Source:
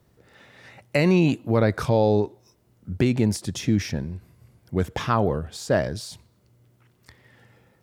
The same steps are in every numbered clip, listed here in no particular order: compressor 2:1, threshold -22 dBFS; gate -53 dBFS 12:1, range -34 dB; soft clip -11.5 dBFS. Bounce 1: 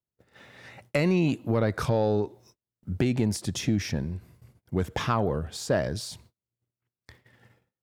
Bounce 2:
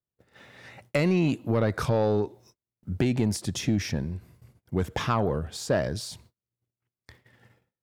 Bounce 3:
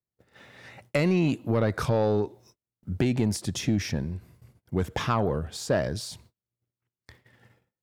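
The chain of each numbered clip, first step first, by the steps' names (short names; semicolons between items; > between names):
gate > compressor > soft clip; soft clip > gate > compressor; gate > soft clip > compressor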